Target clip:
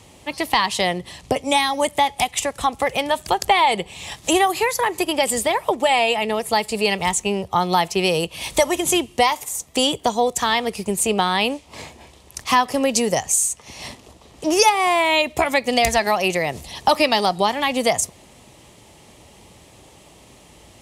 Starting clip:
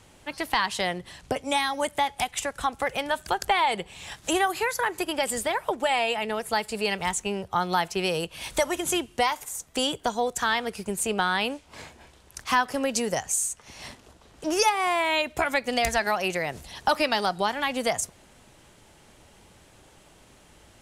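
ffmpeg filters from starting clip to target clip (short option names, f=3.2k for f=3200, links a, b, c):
-af "highpass=49,equalizer=f=1.5k:t=o:w=0.28:g=-13.5,volume=7.5dB"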